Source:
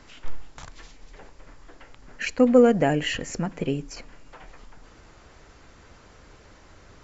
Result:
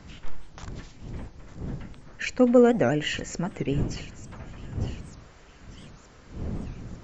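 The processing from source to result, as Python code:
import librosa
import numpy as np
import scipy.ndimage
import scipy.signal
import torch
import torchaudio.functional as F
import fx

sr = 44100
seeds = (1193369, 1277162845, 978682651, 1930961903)

y = fx.dmg_wind(x, sr, seeds[0], corner_hz=160.0, level_db=-36.0)
y = fx.echo_wet_highpass(y, sr, ms=903, feedback_pct=58, hz=2600.0, wet_db=-13.0)
y = fx.record_warp(y, sr, rpm=78.0, depth_cents=250.0)
y = y * 10.0 ** (-1.5 / 20.0)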